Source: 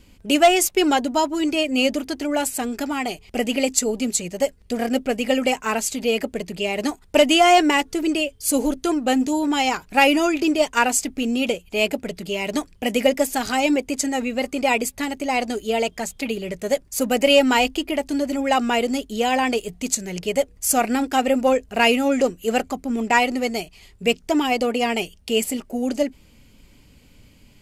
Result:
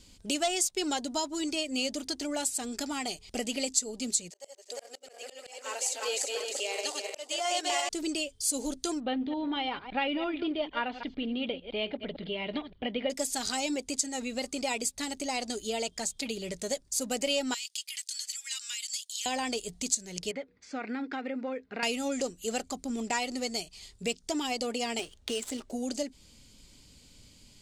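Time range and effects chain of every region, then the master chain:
4.3–7.89 regenerating reverse delay 0.175 s, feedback 61%, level -4 dB + inverse Chebyshev high-pass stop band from 200 Hz + auto swell 0.656 s
9–13.1 reverse delay 0.113 s, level -13 dB + steep low-pass 3500 Hz 48 dB/oct + notch 2600 Hz, Q 13
17.54–19.26 Bessel high-pass 2800 Hz, order 6 + compressor 2.5:1, threshold -33 dBFS + high shelf 4600 Hz +5 dB
20.31–21.83 compressor 2:1, threshold -29 dBFS + speaker cabinet 170–3200 Hz, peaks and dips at 270 Hz +4 dB, 460 Hz +3 dB, 650 Hz -6 dB, 1500 Hz +6 dB, 2100 Hz +7 dB, 3000 Hz -8 dB
24.99–25.71 median filter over 9 samples + bell 190 Hz -13.5 dB 0.34 oct + three-band squash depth 70%
whole clip: band shelf 5700 Hz +11.5 dB; compressor 2:1, threshold -26 dBFS; gain -7 dB

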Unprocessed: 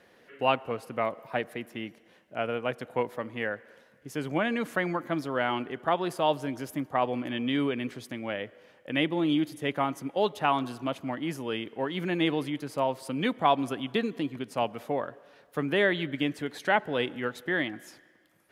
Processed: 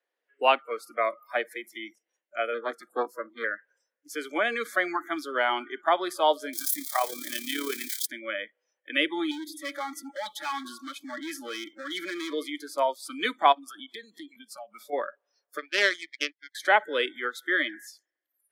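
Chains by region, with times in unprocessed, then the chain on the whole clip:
2.54–3.44 bell 2500 Hz -12 dB 0.82 oct + Doppler distortion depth 0.4 ms
6.53–8.06 switching spikes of -24.5 dBFS + AM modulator 35 Hz, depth 50%
9.31–12.33 comb 3.6 ms, depth 63% + compressor 5:1, threshold -26 dBFS + overloaded stage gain 31 dB
13.52–14.93 notch 6400 Hz, Q 17 + compressor 16:1, threshold -34 dBFS
15.58–16.55 synth low-pass 2700 Hz, resonance Q 2 + power-law curve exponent 2
whole clip: Bessel high-pass 500 Hz, order 8; spectral noise reduction 29 dB; gain +5 dB

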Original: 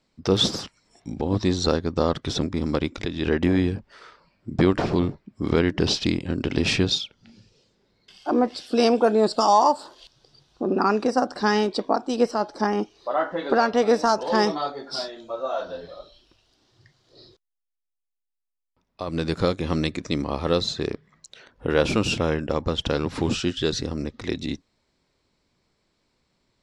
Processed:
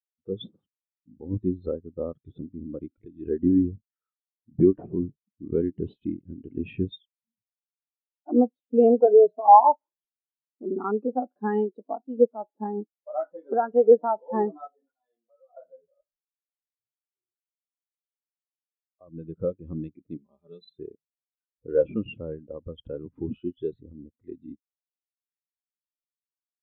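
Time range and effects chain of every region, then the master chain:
9.05–9.45 compressor 4:1, threshold -19 dBFS + ripple EQ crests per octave 1.6, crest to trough 12 dB
14.67–15.57 tone controls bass -9 dB, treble +1 dB + comb 4 ms, depth 96% + compressor 5:1, threshold -35 dBFS
20.17–20.79 ladder low-pass 4400 Hz, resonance 55% + comb 5 ms, depth 85%
whole clip: steep low-pass 3500 Hz; AGC gain up to 5 dB; spectral expander 2.5:1

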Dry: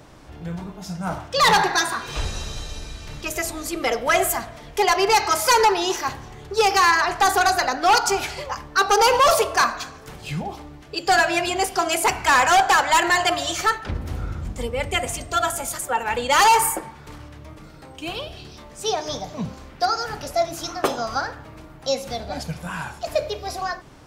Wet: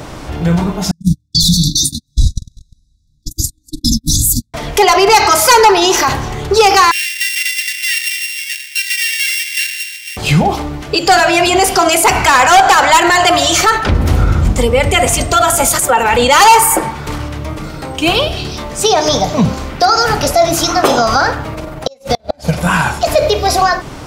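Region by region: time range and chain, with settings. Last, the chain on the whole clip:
0.91–4.54 gate -25 dBFS, range -51 dB + brick-wall FIR band-stop 310–3400 Hz + tone controls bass +12 dB, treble +6 dB
6.91–10.17 sample sorter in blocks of 16 samples + steep high-pass 1800 Hz 72 dB/oct + compressor 2.5:1, threshold -39 dBFS
21.54–22.61 bell 580 Hz +8 dB 0.37 oct + AM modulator 21 Hz, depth 30% + flipped gate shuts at -18 dBFS, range -38 dB
whole clip: notch 1700 Hz, Q 22; maximiser +19.5 dB; gain -1 dB

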